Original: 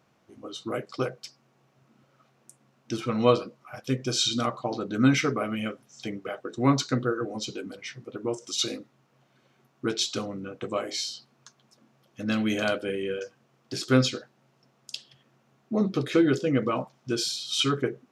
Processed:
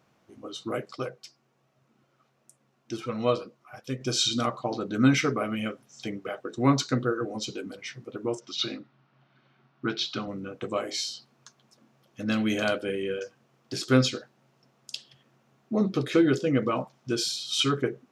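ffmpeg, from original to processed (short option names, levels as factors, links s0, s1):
-filter_complex "[0:a]asettb=1/sr,asplit=3[s0][s1][s2];[s0]atrim=end=0.944[s3];[s1]atrim=start=0.94:end=4.01,asetpts=PTS-STARTPTS,afade=t=in:d=0.004:c=qsin,afade=t=out:st=3.066:d=0.004:c=qsin,flanger=delay=1.5:depth=1.4:regen=69:speed=1.3:shape=sinusoidal[s4];[s2]atrim=start=4.006[s5];[s3][s4]acrossfade=d=0.004:c1=hsin:c2=qsin[s6];[s6][s5]acrossfade=d=0.004:c1=qsin:c2=hsin,asettb=1/sr,asplit=3[s7][s8][s9];[s7]atrim=end=8.404[s10];[s8]atrim=start=8.4:end=10.28,asetpts=PTS-STARTPTS,afade=t=in:d=0.004:c=qsin,afade=t=out:st=1.876:d=0.004:c=qsin,highpass=120,equalizer=f=140:t=q:w=4:g=5,equalizer=f=480:t=q:w=4:g=-9,equalizer=f=1400:t=q:w=4:g=4,lowpass=f=4500:w=0.5412,lowpass=f=4500:w=1.3066[s11];[s9]atrim=start=10.276[s12];[s10][s11]acrossfade=d=0.004:c1=hsin:c2=qsin[s13];[s13][s12]acrossfade=d=0.004:c1=qsin:c2=hsin"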